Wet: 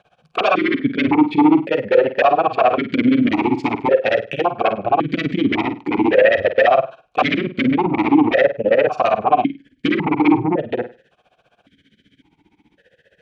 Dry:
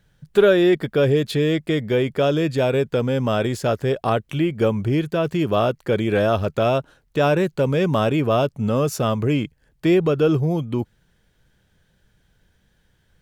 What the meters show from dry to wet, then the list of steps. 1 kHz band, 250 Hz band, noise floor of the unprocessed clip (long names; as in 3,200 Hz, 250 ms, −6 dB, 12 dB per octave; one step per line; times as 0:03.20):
+9.0 dB, +5.0 dB, −64 dBFS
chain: treble cut that deepens with the level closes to 1,200 Hz, closed at −15 dBFS
amplitude tremolo 15 Hz, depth 100%
sine wavefolder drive 17 dB, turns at −6 dBFS
flutter between parallel walls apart 8.7 metres, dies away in 0.28 s
formant filter that steps through the vowels 1.8 Hz
level +6 dB